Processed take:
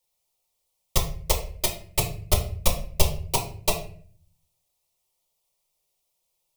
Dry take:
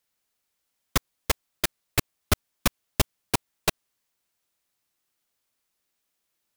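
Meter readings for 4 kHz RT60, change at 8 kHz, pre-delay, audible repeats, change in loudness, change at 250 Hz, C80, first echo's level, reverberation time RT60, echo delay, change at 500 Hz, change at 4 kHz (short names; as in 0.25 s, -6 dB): 0.35 s, +3.0 dB, 3 ms, none, +2.0 dB, -3.5 dB, 13.0 dB, none, 0.50 s, none, +3.5 dB, +1.0 dB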